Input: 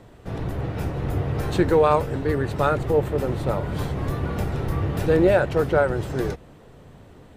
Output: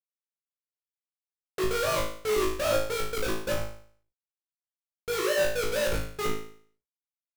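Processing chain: sine-wave speech; Schmitt trigger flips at -25 dBFS; companded quantiser 2-bit; notches 60/120/180/240/300/360/420/480 Hz; bit-crush 7-bit; flutter echo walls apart 3.2 m, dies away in 0.52 s; gain -4.5 dB

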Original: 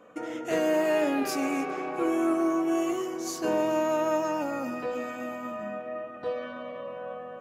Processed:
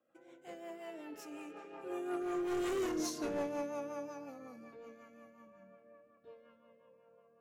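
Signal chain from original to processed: Doppler pass-by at 2.84, 26 m/s, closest 3.4 m; hard clip -35.5 dBFS, distortion -9 dB; rotary speaker horn 5.5 Hz; gain +4.5 dB

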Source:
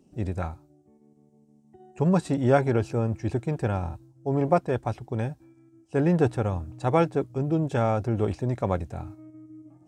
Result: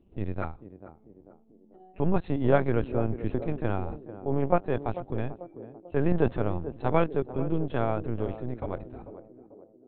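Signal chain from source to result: ending faded out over 2.47 s; LPC vocoder at 8 kHz pitch kept; narrowing echo 0.442 s, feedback 57%, band-pass 370 Hz, level -11 dB; gain -1.5 dB

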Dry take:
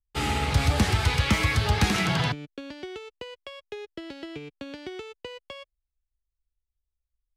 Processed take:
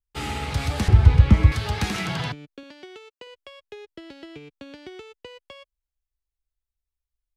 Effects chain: 0.88–1.52 tilt -4 dB/oct; 2.63–3.27 HPF 330 Hz 6 dB/oct; gain -3 dB

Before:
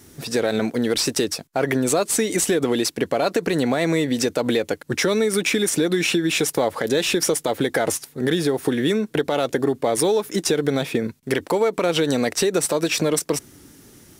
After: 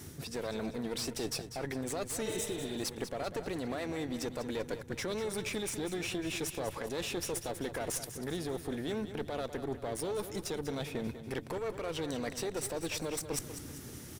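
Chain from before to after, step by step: one diode to ground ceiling -23.5 dBFS; reverse; compressor 6:1, threshold -35 dBFS, peak gain reduction 16.5 dB; reverse; band noise 68–160 Hz -53 dBFS; on a send: feedback echo 0.195 s, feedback 45%, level -11 dB; on the sum: spectral repair 2.28–2.75, 430–4700 Hz both

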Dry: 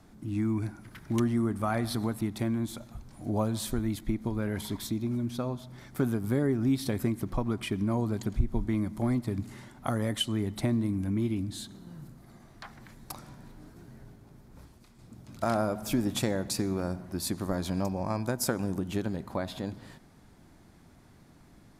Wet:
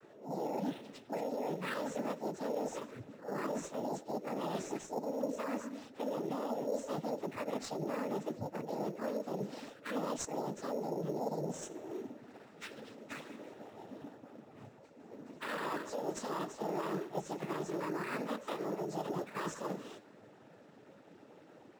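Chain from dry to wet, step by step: pitch shift by moving bins +12 st; HPF 240 Hz 6 dB/oct; limiter -27 dBFS, peak gain reduction 9 dB; reverse; compressor, threshold -42 dBFS, peak gain reduction 11 dB; reverse; noise vocoder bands 12; in parallel at -7 dB: sample-rate reducer 6100 Hz, jitter 0%; on the sum: vibrato 0.61 Hz 16 cents; mismatched tape noise reduction decoder only; gain +4.5 dB

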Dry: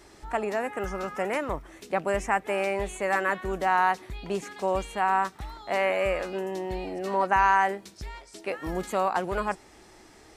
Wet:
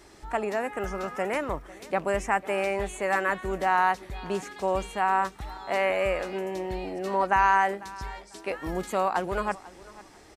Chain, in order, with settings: feedback echo 0.496 s, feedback 25%, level -20 dB

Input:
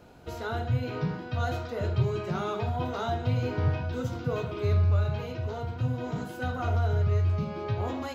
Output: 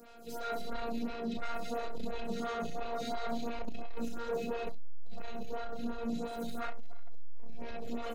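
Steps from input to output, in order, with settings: high shelf 3800 Hz +9.5 dB; notch 800 Hz, Q 5; on a send: loudspeakers at several distances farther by 12 m -4 dB, 77 m -2 dB; on the sum: robotiser 233 Hz; bell 990 Hz -4.5 dB 0.35 oct; flutter echo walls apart 11.5 m, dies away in 0.48 s; soft clip -31 dBFS, distortion -7 dB; photocell phaser 2.9 Hz; gain +3 dB

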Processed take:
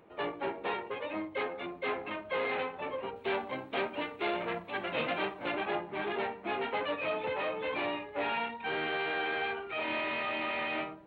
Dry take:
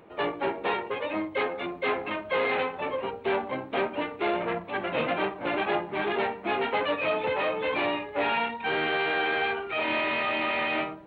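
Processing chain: 3.16–5.52 high shelf 3100 Hz +10 dB; gain -6.5 dB

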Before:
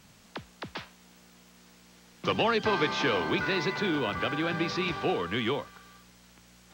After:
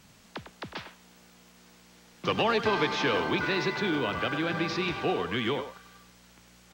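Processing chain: speakerphone echo 0.1 s, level -9 dB

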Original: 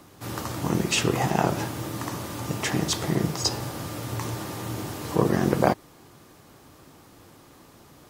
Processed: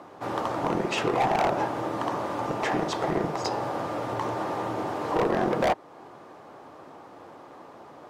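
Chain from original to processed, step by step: in parallel at -2 dB: compressor, threshold -31 dBFS, peak gain reduction 16 dB; on the sum: band-pass 730 Hz, Q 1.2; overloaded stage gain 25 dB; gain +6 dB

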